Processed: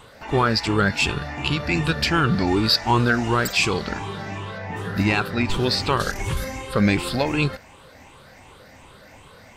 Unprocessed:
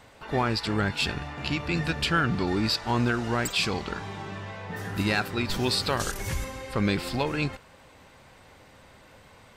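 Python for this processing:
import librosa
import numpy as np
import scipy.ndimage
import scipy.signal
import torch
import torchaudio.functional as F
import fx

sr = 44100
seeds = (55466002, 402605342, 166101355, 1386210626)

y = fx.spec_ripple(x, sr, per_octave=0.66, drift_hz=2.7, depth_db=9)
y = fx.lowpass(y, sr, hz=4000.0, slope=6, at=(4.58, 6.37))
y = F.gain(torch.from_numpy(y), 5.0).numpy()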